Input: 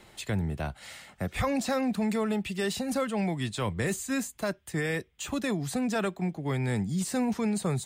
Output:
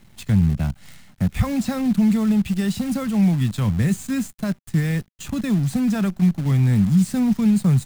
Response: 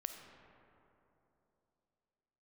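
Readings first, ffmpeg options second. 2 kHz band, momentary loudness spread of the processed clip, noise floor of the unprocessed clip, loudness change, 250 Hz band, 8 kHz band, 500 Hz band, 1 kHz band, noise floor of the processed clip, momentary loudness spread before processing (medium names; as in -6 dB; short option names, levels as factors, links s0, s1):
0.0 dB, 9 LU, -58 dBFS, +9.5 dB, +11.5 dB, +1.0 dB, -2.0 dB, -0.5 dB, -52 dBFS, 6 LU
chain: -af "acrusher=bits=7:dc=4:mix=0:aa=0.000001,lowshelf=f=280:t=q:w=1.5:g=11.5"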